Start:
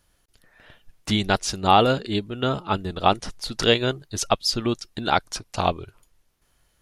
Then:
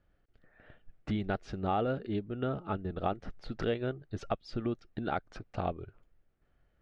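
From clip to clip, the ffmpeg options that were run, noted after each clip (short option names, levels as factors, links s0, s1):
-af "lowpass=1500,equalizer=f=980:t=o:w=0.36:g=-11,acompressor=threshold=0.0316:ratio=2,volume=0.668"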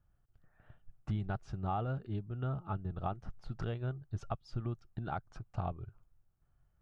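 -af "equalizer=f=125:t=o:w=1:g=6,equalizer=f=250:t=o:w=1:g=-8,equalizer=f=500:t=o:w=1:g=-10,equalizer=f=1000:t=o:w=1:g=3,equalizer=f=2000:t=o:w=1:g=-10,equalizer=f=4000:t=o:w=1:g=-8,volume=0.891"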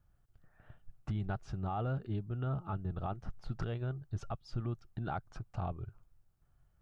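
-af "alimiter=level_in=2:limit=0.0631:level=0:latency=1:release=25,volume=0.501,volume=1.33"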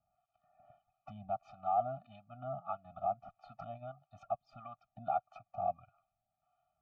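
-filter_complex "[0:a]asplit=3[s0][s1][s2];[s0]bandpass=f=730:t=q:w=8,volume=1[s3];[s1]bandpass=f=1090:t=q:w=8,volume=0.501[s4];[s2]bandpass=f=2440:t=q:w=8,volume=0.355[s5];[s3][s4][s5]amix=inputs=3:normalize=0,acrossover=split=670[s6][s7];[s6]aeval=exprs='val(0)*(1-0.7/2+0.7/2*cos(2*PI*1.6*n/s))':c=same[s8];[s7]aeval=exprs='val(0)*(1-0.7/2-0.7/2*cos(2*PI*1.6*n/s))':c=same[s9];[s8][s9]amix=inputs=2:normalize=0,afftfilt=real='re*eq(mod(floor(b*sr/1024/290),2),0)':imag='im*eq(mod(floor(b*sr/1024/290),2),0)':win_size=1024:overlap=0.75,volume=6.31"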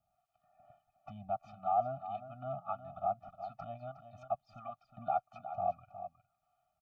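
-af "aecho=1:1:363:0.282,volume=1.12"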